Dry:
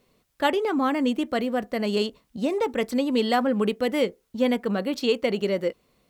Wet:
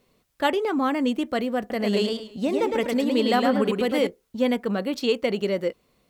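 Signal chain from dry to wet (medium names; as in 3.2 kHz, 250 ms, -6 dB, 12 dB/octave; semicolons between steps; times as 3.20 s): 1.59–4.07 s: modulated delay 107 ms, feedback 30%, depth 109 cents, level -3.5 dB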